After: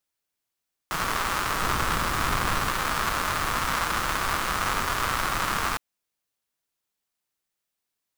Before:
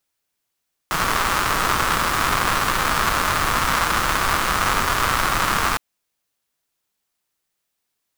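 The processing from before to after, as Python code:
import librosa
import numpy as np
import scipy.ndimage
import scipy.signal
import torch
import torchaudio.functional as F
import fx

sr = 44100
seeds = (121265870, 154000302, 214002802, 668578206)

y = fx.low_shelf(x, sr, hz=220.0, db=6.5, at=(1.61, 2.69))
y = F.gain(torch.from_numpy(y), -6.5).numpy()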